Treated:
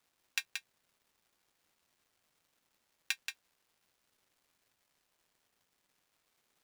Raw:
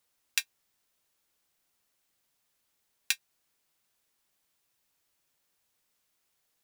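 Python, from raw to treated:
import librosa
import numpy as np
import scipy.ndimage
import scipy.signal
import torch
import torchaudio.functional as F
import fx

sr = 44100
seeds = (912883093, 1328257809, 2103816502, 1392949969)

y = scipy.signal.sosfilt(scipy.signal.butter(2, 100.0, 'highpass', fs=sr, output='sos'), x)
y = fx.high_shelf(y, sr, hz=3900.0, db=-11.0)
y = fx.dmg_crackle(y, sr, seeds[0], per_s=450.0, level_db=-62.0)
y = y + 10.0 ** (-6.0 / 20.0) * np.pad(y, (int(179 * sr / 1000.0), 0))[:len(y)]
y = y * 10.0 ** (-1.0 / 20.0)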